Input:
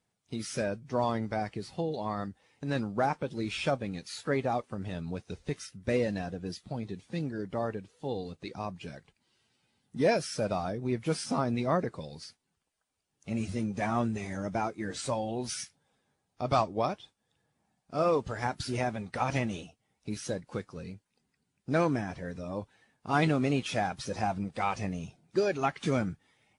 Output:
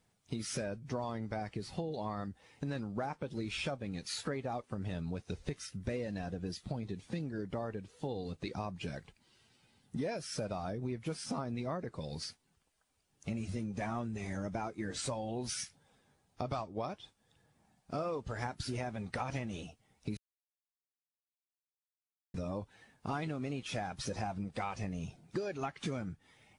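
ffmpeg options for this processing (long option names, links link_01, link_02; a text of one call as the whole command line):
ffmpeg -i in.wav -filter_complex "[0:a]asplit=3[link_01][link_02][link_03];[link_01]atrim=end=20.17,asetpts=PTS-STARTPTS,afade=type=out:start_time=20.166:duration=0.004:curve=hsin[link_04];[link_02]atrim=start=20.17:end=22.34,asetpts=PTS-STARTPTS,volume=0[link_05];[link_03]atrim=start=22.34,asetpts=PTS-STARTPTS,afade=type=in:duration=0.004:curve=hsin[link_06];[link_04][link_05][link_06]concat=n=3:v=0:a=1,lowshelf=frequency=71:gain=8.5,acompressor=threshold=-40dB:ratio=6,volume=4.5dB" out.wav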